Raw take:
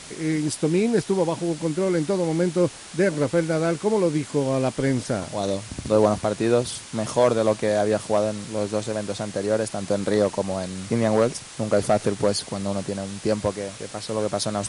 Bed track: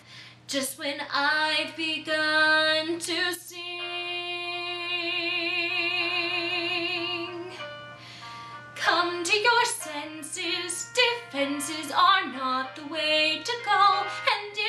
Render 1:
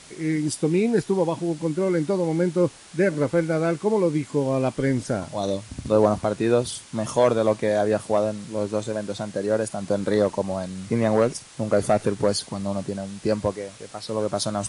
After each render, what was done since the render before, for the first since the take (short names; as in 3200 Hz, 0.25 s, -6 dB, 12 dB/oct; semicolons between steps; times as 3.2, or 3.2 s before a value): noise print and reduce 6 dB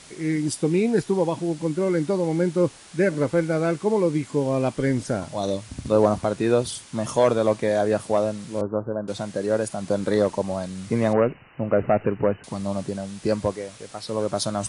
8.61–9.08 steep low-pass 1500 Hz 72 dB/oct; 11.13–12.44 brick-wall FIR low-pass 3000 Hz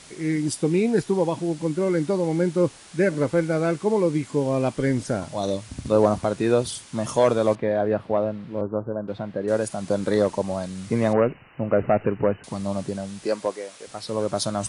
7.55–9.48 air absorption 390 m; 13.24–13.87 HPF 340 Hz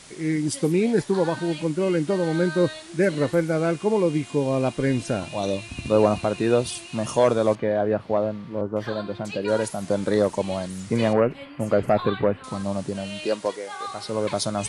add bed track -14 dB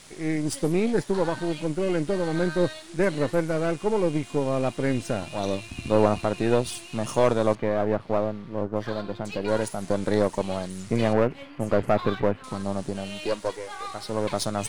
half-wave gain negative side -7 dB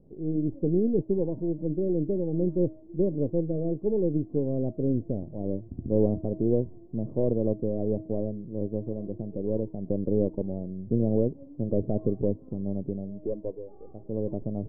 inverse Chebyshev low-pass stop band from 1600 Hz, stop band 60 dB; de-hum 318.1 Hz, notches 30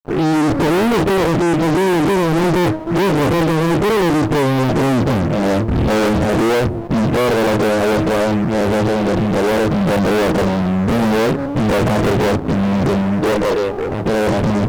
spectral dilation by 60 ms; fuzz box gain 40 dB, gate -47 dBFS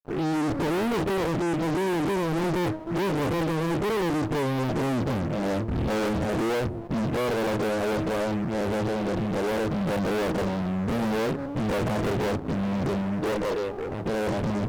gain -11 dB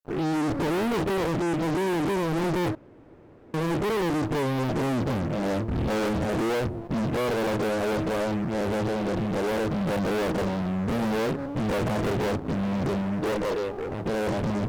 2.75–3.54 room tone